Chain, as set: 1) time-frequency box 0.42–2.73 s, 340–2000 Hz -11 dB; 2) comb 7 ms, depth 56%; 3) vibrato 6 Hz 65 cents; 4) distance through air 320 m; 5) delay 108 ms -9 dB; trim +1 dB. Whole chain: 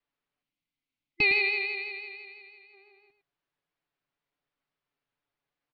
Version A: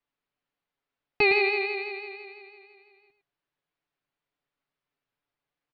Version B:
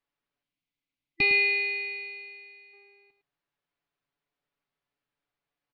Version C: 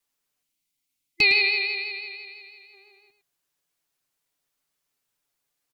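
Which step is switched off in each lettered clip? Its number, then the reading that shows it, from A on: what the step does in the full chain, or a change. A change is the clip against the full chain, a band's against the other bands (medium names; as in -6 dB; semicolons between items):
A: 1, 4 kHz band -9.5 dB; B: 3, 1 kHz band -2.0 dB; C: 4, 4 kHz band +9.0 dB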